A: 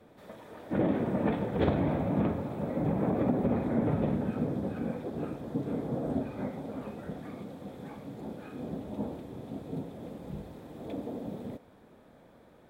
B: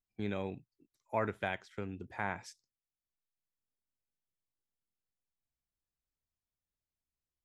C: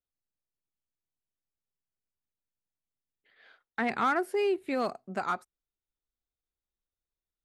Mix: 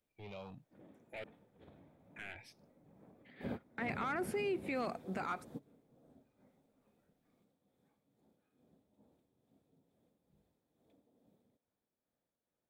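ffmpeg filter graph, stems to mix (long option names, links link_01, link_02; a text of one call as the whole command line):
ffmpeg -i stem1.wav -i stem2.wav -i stem3.wav -filter_complex "[0:a]highshelf=frequency=3700:gain=10.5,tremolo=f=2.3:d=0.42,volume=-12dB[link_01];[1:a]asoftclip=type=tanh:threshold=-37.5dB,asplit=2[link_02][link_03];[link_03]afreqshift=0.87[link_04];[link_02][link_04]amix=inputs=2:normalize=1,volume=-3dB,asplit=3[link_05][link_06][link_07];[link_05]atrim=end=1.24,asetpts=PTS-STARTPTS,afade=type=out:start_time=1.236:duration=0.004:curve=hsin[link_08];[link_06]atrim=start=1.24:end=2.16,asetpts=PTS-STARTPTS,volume=0[link_09];[link_07]atrim=start=2.16,asetpts=PTS-STARTPTS,afade=type=in:duration=0.004:curve=hsin[link_10];[link_08][link_09][link_10]concat=n=3:v=0:a=1[link_11];[2:a]volume=-0.5dB,asplit=2[link_12][link_13];[link_13]apad=whole_len=559832[link_14];[link_01][link_14]sidechaingate=range=-21dB:threshold=-59dB:ratio=16:detection=peak[link_15];[link_11][link_12]amix=inputs=2:normalize=0,equalizer=frequency=2300:width_type=o:width=0.5:gain=7.5,alimiter=level_in=1.5dB:limit=-24dB:level=0:latency=1:release=12,volume=-1.5dB,volume=0dB[link_16];[link_15][link_16]amix=inputs=2:normalize=0,alimiter=level_in=5.5dB:limit=-24dB:level=0:latency=1:release=42,volume=-5.5dB" out.wav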